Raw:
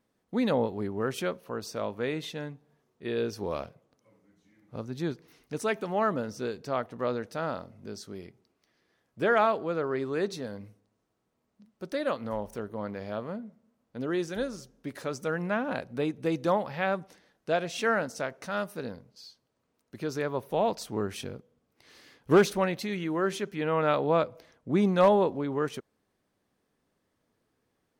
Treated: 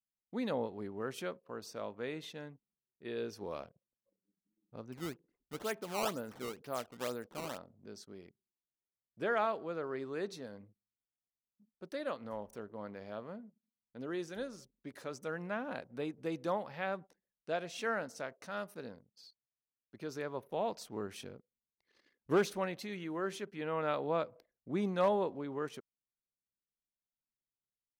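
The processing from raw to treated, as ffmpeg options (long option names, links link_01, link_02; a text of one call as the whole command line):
ffmpeg -i in.wav -filter_complex "[0:a]asettb=1/sr,asplit=3[link_01][link_02][link_03];[link_01]atrim=end=4.924[link_04];[link_02]atrim=start=4.92:end=7.58,asetpts=PTS-STARTPTS,afade=type=in:duration=0.004:curve=qsin,afade=type=out:start_time=2.656:duration=0.004:curve=qsin,acrusher=samples=15:mix=1:aa=0.000001:lfo=1:lforange=24:lforate=2.1[link_05];[link_03]atrim=start=7.576[link_06];[link_04][link_05]acrossfade=duration=0.004:curve1=hsin:curve2=qsin[link_07];[link_07][link_06]acrossfade=duration=0.004:curve1=qsin:curve2=hsin,anlmdn=0.00158,lowshelf=frequency=100:gain=-9.5,volume=-8.5dB" out.wav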